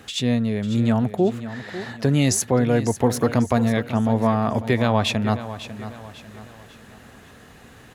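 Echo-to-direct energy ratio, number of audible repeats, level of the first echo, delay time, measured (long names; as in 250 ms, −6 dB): −12.0 dB, 3, −13.0 dB, 547 ms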